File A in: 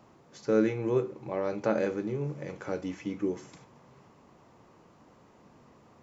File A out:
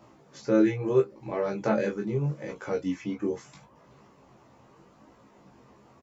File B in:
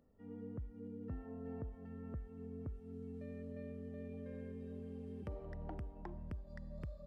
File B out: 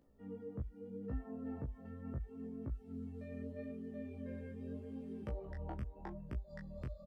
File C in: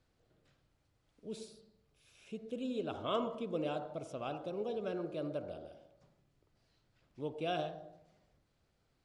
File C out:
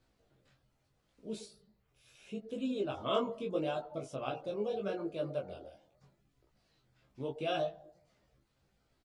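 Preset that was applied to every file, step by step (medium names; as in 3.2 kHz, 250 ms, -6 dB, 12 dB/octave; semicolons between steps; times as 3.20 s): reverb removal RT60 0.59 s; chorus 0.78 Hz, delay 18 ms, depth 6.4 ms; doubling 15 ms -4.5 dB; trim +5 dB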